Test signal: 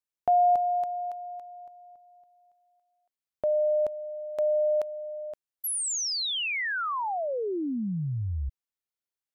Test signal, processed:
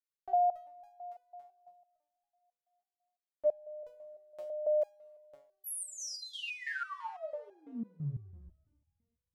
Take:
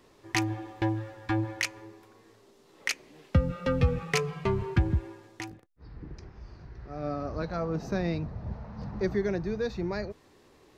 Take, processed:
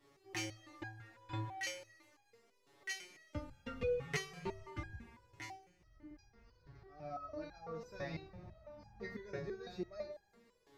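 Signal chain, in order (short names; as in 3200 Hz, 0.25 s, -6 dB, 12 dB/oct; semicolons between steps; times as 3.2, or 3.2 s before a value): two-slope reverb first 0.3 s, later 2.1 s, from -18 dB, DRR 3 dB; stepped resonator 6 Hz 140–820 Hz; gain +1 dB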